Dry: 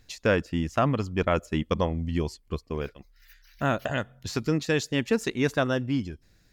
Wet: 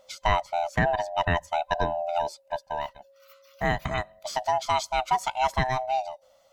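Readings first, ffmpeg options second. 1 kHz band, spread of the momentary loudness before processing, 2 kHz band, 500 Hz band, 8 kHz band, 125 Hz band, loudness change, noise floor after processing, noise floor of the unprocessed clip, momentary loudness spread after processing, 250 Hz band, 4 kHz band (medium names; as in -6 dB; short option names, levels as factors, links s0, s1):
+9.0 dB, 9 LU, +1.0 dB, -1.5 dB, +0.5 dB, -5.0 dB, 0.0 dB, -61 dBFS, -62 dBFS, 8 LU, -10.5 dB, +1.0 dB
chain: -af "afftfilt=real='real(if(lt(b,1008),b+24*(1-2*mod(floor(b/24),2)),b),0)':imag='imag(if(lt(b,1008),b+24*(1-2*mod(floor(b/24),2)),b),0)':win_size=2048:overlap=0.75"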